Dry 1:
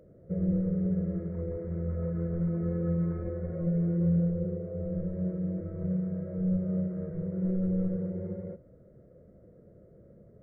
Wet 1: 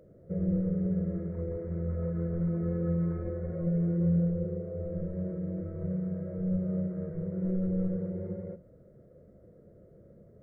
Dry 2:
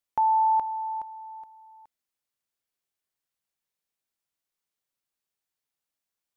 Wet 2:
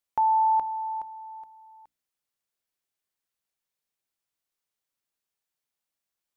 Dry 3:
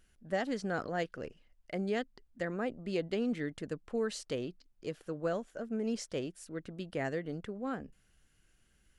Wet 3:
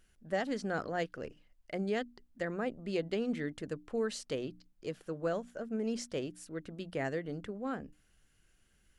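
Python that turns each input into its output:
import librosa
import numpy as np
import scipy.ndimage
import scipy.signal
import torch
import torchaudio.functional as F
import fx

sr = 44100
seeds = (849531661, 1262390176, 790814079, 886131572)

y = fx.hum_notches(x, sr, base_hz=60, count=5)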